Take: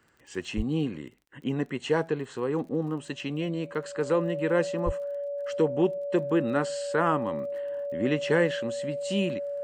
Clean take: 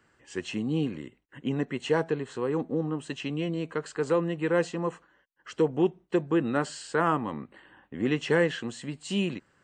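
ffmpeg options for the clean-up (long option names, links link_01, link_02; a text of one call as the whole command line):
ffmpeg -i in.wav -filter_complex "[0:a]adeclick=threshold=4,bandreject=frequency=570:width=30,asplit=3[link_01][link_02][link_03];[link_01]afade=type=out:start_time=0.56:duration=0.02[link_04];[link_02]highpass=frequency=140:width=0.5412,highpass=frequency=140:width=1.3066,afade=type=in:start_time=0.56:duration=0.02,afade=type=out:start_time=0.68:duration=0.02[link_05];[link_03]afade=type=in:start_time=0.68:duration=0.02[link_06];[link_04][link_05][link_06]amix=inputs=3:normalize=0,asplit=3[link_07][link_08][link_09];[link_07]afade=type=out:start_time=4.85:duration=0.02[link_10];[link_08]highpass=frequency=140:width=0.5412,highpass=frequency=140:width=1.3066,afade=type=in:start_time=4.85:duration=0.02,afade=type=out:start_time=4.97:duration=0.02[link_11];[link_09]afade=type=in:start_time=4.97:duration=0.02[link_12];[link_10][link_11][link_12]amix=inputs=3:normalize=0" out.wav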